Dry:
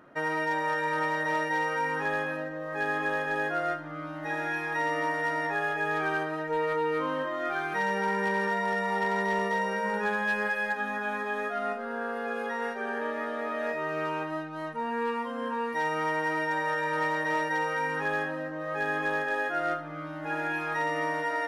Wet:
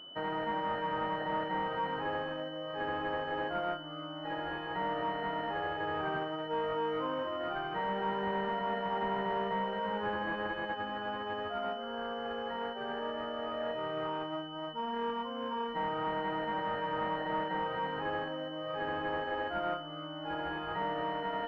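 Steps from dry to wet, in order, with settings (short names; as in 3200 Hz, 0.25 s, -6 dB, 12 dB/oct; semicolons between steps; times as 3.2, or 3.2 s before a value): low shelf 230 Hz -5.5 dB; notch 440 Hz, Q 12; overloaded stage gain 23 dB; pulse-width modulation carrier 3000 Hz; gain -2.5 dB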